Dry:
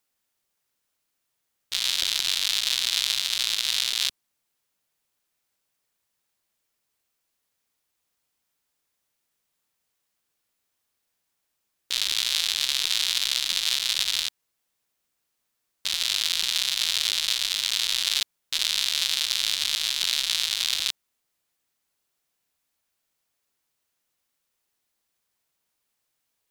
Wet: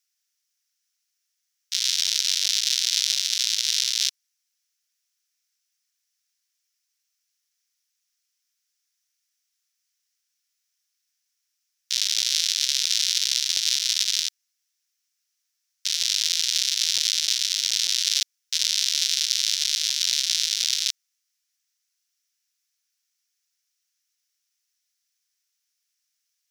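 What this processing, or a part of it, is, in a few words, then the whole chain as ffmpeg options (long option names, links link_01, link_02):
headphones lying on a table: -af "highpass=frequency=1500:width=0.5412,highpass=frequency=1500:width=1.3066,equalizer=frequency=5700:width_type=o:width=0.58:gain=12,volume=-3dB"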